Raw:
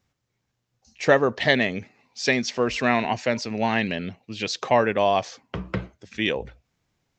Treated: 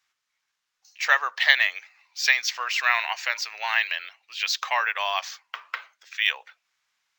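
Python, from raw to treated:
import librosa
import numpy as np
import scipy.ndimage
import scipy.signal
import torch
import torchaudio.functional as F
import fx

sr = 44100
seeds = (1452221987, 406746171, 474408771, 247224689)

y = scipy.signal.sosfilt(scipy.signal.butter(4, 1100.0, 'highpass', fs=sr, output='sos'), x)
y = np.interp(np.arange(len(y)), np.arange(len(y))[::2], y[::2])
y = F.gain(torch.from_numpy(y), 4.5).numpy()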